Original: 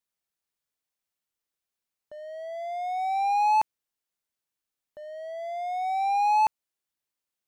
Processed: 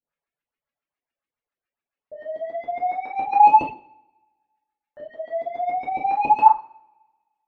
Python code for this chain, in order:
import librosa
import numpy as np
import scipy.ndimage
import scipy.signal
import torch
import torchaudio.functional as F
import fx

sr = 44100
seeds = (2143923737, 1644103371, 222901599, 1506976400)

y = fx.filter_lfo_lowpass(x, sr, shape='saw_up', hz=7.2, low_hz=290.0, high_hz=2900.0, q=2.6)
y = fx.rev_double_slope(y, sr, seeds[0], early_s=0.67, late_s=1.7, knee_db=-22, drr_db=-7.0)
y = fx.dereverb_blind(y, sr, rt60_s=1.2)
y = y * librosa.db_to_amplitude(-3.5)